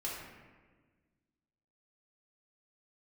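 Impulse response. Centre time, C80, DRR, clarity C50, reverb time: 76 ms, 3.0 dB, -6.0 dB, 0.5 dB, 1.4 s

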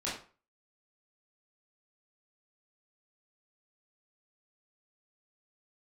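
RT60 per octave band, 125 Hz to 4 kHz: 0.40, 0.35, 0.40, 0.40, 0.35, 0.30 s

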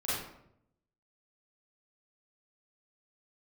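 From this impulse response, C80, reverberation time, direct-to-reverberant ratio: 3.0 dB, 0.75 s, -11.5 dB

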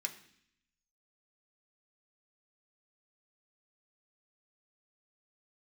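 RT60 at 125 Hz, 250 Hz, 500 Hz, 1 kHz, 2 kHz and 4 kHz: 0.95, 0.95, 0.65, 0.65, 0.80, 0.85 s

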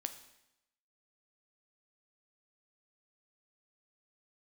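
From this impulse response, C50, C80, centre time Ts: 11.5 dB, 14.0 dB, 10 ms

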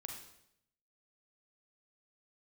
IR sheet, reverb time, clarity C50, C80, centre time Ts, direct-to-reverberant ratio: 0.75 s, 4.0 dB, 7.0 dB, 35 ms, 1.5 dB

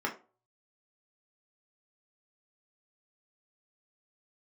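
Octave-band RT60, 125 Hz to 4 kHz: 0.65, 0.35, 0.40, 0.35, 0.25, 0.20 s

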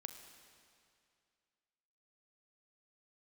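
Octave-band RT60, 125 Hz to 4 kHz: 2.4, 2.4, 2.4, 2.3, 2.3, 2.2 s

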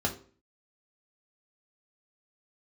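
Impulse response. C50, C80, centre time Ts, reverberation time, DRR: 12.0 dB, 16.0 dB, 12 ms, 0.45 s, 0.0 dB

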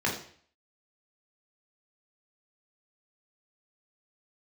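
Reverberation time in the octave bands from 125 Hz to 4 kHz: 0.55, 0.50, 0.50, 0.50, 0.55, 0.50 s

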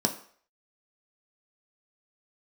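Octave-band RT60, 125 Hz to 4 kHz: 0.35, 0.40, 0.50, 0.50, 0.50, 0.50 s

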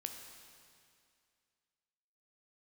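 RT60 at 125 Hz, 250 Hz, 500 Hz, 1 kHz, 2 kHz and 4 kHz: 2.2, 2.3, 2.3, 2.3, 2.3, 2.2 s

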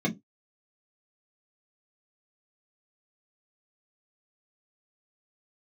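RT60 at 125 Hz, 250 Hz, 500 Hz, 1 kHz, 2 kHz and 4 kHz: 0.20, 0.20, 0.20, 0.15, 0.10, 0.15 s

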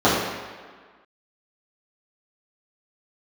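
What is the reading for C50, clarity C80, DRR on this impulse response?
0.5 dB, 2.5 dB, -11.5 dB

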